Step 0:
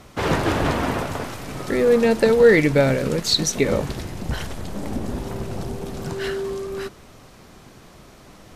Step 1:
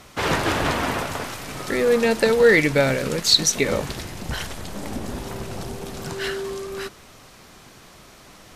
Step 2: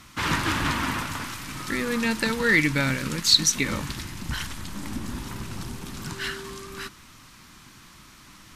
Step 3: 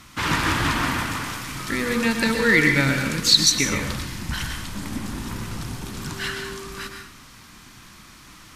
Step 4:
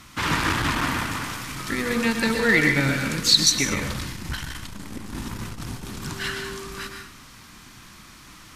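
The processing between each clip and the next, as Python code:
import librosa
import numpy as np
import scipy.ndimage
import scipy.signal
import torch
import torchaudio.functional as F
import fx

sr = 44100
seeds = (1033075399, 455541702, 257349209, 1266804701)

y1 = fx.tilt_shelf(x, sr, db=-4.0, hz=860.0)
y2 = fx.band_shelf(y1, sr, hz=550.0, db=-12.5, octaves=1.2)
y2 = y2 * librosa.db_to_amplitude(-1.5)
y3 = fx.rev_plate(y2, sr, seeds[0], rt60_s=0.56, hf_ratio=0.8, predelay_ms=105, drr_db=3.5)
y3 = y3 * librosa.db_to_amplitude(2.0)
y4 = fx.transformer_sat(y3, sr, knee_hz=610.0)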